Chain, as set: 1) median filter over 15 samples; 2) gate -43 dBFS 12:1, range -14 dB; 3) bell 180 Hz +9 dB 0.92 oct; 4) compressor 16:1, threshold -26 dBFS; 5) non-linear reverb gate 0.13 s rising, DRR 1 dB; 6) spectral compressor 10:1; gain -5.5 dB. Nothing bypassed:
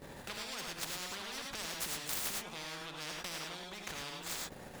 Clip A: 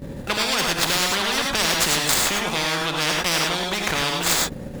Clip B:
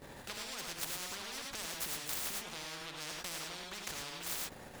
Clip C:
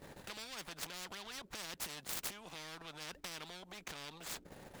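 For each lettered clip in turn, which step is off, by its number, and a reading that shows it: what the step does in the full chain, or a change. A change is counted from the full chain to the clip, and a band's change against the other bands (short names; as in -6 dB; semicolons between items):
4, mean gain reduction 12.5 dB; 3, 8 kHz band +2.0 dB; 5, crest factor change +4.5 dB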